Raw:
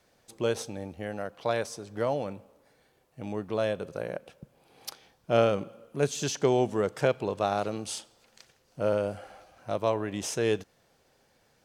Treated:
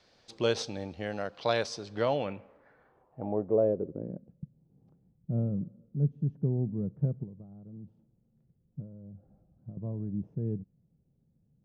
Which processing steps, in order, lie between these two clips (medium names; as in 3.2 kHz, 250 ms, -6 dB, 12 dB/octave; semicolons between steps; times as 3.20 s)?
7.23–9.77 s: compression 8:1, threshold -37 dBFS, peak gain reduction 15 dB; low-pass sweep 4.6 kHz -> 170 Hz, 1.90–4.37 s